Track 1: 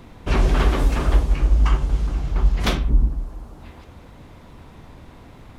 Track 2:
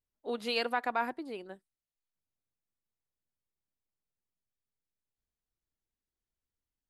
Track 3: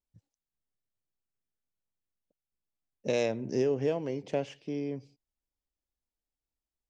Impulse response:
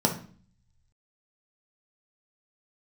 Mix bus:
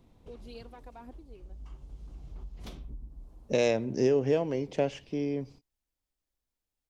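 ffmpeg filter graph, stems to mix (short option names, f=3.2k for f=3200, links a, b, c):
-filter_complex "[0:a]volume=-17dB[a];[1:a]aphaser=in_gain=1:out_gain=1:delay=2.4:decay=0.42:speed=1.8:type=triangular,lowshelf=f=390:g=11,volume=-18dB,asplit=2[b][c];[2:a]adelay=450,volume=3dB[d];[c]apad=whole_len=246289[e];[a][e]sidechaincompress=threshold=-56dB:ratio=16:attack=16:release=1260[f];[f][b]amix=inputs=2:normalize=0,equalizer=f=1.6k:w=0.93:g=-9.5,acompressor=threshold=-39dB:ratio=6,volume=0dB[g];[d][g]amix=inputs=2:normalize=0"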